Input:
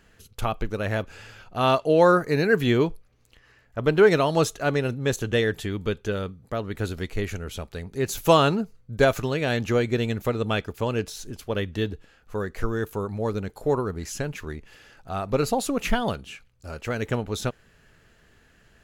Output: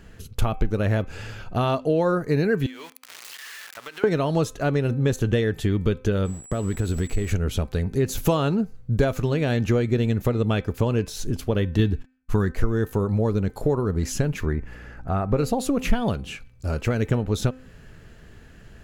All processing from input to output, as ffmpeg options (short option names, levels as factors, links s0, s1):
-filter_complex "[0:a]asettb=1/sr,asplit=3[s0][s1][s2];[s0]atrim=end=2.664[s3];[s1]atrim=start=2.66:end=4.04,asetpts=PTS-STARTPTS,afade=t=in:d=0.004:c=qsin,afade=t=out:st=1.376:d=0.004:c=qsin,aeval=exprs='val(0)+0.5*0.0224*sgn(val(0))':c=same,highpass=1500,acompressor=threshold=0.0112:ratio=8:attack=3.2:release=140:knee=1:detection=peak[s4];[s2]atrim=start=4.036[s5];[s3][s4]acrossfade=d=0.004:c1=hsin:c2=qsin[s6];[s6][s5]acrossfade=d=0.004:c1=qsin:c2=hsin,asettb=1/sr,asplit=3[s7][s8][s9];[s7]atrim=end=6.254[s10];[s8]atrim=start=6.25:end=7.33,asetpts=PTS-STARTPTS,afade=t=in:d=0.004:c=qsin,afade=t=out:st=1.076:d=0.004:c=qsin,acompressor=threshold=0.0316:ratio=6:attack=3.2:release=140:knee=1:detection=peak,aeval=exprs='val(0)*gte(abs(val(0)),0.00398)':c=same,aeval=exprs='val(0)+0.00447*sin(2*PI*7800*n/s)':c=same[s11];[s9]atrim=start=7.326[s12];[s10][s11]acrossfade=d=0.004:c1=hsin:c2=qsin[s13];[s13][s12]acrossfade=d=0.004:c1=qsin:c2=hsin,asettb=1/sr,asplit=3[s14][s15][s16];[s14]atrim=end=11.794[s17];[s15]atrim=start=11.79:end=12.52,asetpts=PTS-STARTPTS,afade=t=in:d=0.004:c=qsin,afade=t=out:st=0.726:d=0.004:c=qsin,agate=range=0.0112:threshold=0.00355:ratio=16:release=100:detection=peak,equalizer=f=540:t=o:w=0.54:g=-11.5,acontrast=53[s18];[s16]atrim=start=12.516[s19];[s17][s18]acrossfade=d=0.004:c1=hsin:c2=qsin[s20];[s20][s19]acrossfade=d=0.004:c1=qsin:c2=hsin,asettb=1/sr,asplit=3[s21][s22][s23];[s21]atrim=end=14.464[s24];[s22]atrim=start=14.46:end=15.37,asetpts=PTS-STARTPTS,afade=t=in:d=0.004:c=qsin,afade=t=out:st=0.906:d=0.004:c=qsin,highshelf=f=2500:t=q:w=1.5:g=-8,aeval=exprs='val(0)+0.00158*(sin(2*PI*60*n/s)+sin(2*PI*2*60*n/s)/2+sin(2*PI*3*60*n/s)/3+sin(2*PI*4*60*n/s)/4+sin(2*PI*5*60*n/s)/5)':c=same[s25];[s23]atrim=start=15.366[s26];[s24][s25]acrossfade=d=0.004:c1=hsin:c2=qsin[s27];[s27][s26]acrossfade=d=0.004:c1=qsin:c2=hsin,acompressor=threshold=0.0282:ratio=3,lowshelf=f=420:g=9.5,bandreject=f=257.6:t=h:w=4,bandreject=f=515.2:t=h:w=4,bandreject=f=772.8:t=h:w=4,bandreject=f=1030.4:t=h:w=4,bandreject=f=1288:t=h:w=4,bandreject=f=1545.6:t=h:w=4,bandreject=f=1803.2:t=h:w=4,bandreject=f=2060.8:t=h:w=4,bandreject=f=2318.4:t=h:w=4,bandreject=f=2576:t=h:w=4,volume=1.68"